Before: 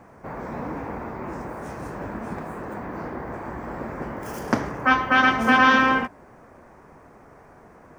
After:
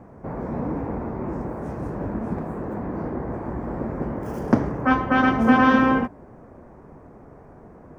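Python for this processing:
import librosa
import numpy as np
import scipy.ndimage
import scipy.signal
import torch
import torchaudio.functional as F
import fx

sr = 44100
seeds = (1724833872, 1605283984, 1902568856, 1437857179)

y = fx.tilt_shelf(x, sr, db=8.5, hz=970.0)
y = F.gain(torch.from_numpy(y), -1.5).numpy()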